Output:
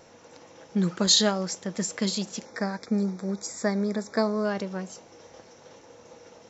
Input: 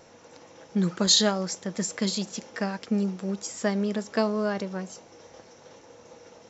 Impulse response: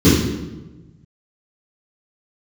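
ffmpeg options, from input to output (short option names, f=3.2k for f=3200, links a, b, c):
-filter_complex "[0:a]asettb=1/sr,asplit=3[a][b][c];[a]atrim=end=2.454[d];[b]atrim=start=2.45:end=4.45,asetpts=PTS-STARTPTS,afade=t=in:d=0.004:c=qsin,afade=t=out:st=1.996:d=0.004:c=qsin,asuperstop=centerf=2900:order=8:qfactor=2.7[e];[c]atrim=start=4.446[f];[d][e]acrossfade=d=0.004:c1=hsin:c2=qsin[g];[g][f]acrossfade=d=0.004:c1=qsin:c2=hsin"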